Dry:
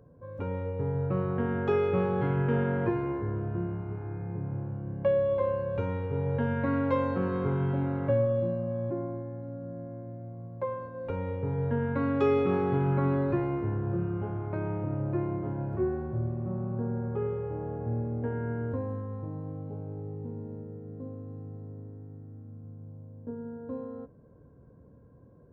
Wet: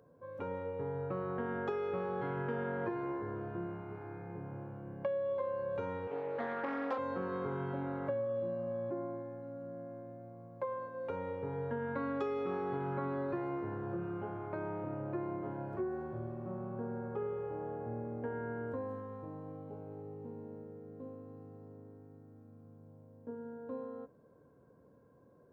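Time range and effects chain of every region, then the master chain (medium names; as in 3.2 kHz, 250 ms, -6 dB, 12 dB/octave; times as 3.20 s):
6.07–6.98 s: high-pass 290 Hz + loudspeaker Doppler distortion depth 0.34 ms
whole clip: high-pass 510 Hz 6 dB/octave; dynamic bell 2.6 kHz, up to -6 dB, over -58 dBFS, Q 1.9; compression, threshold -33 dBFS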